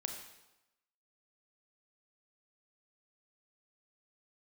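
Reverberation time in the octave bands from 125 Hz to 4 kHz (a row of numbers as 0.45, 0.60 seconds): 0.90, 0.95, 0.95, 1.0, 0.90, 0.85 seconds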